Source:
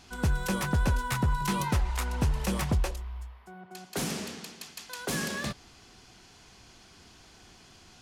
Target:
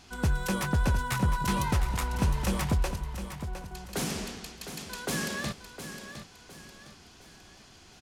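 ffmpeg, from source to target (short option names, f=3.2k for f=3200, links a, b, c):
-af "aecho=1:1:710|1420|2130|2840:0.316|0.12|0.0457|0.0174"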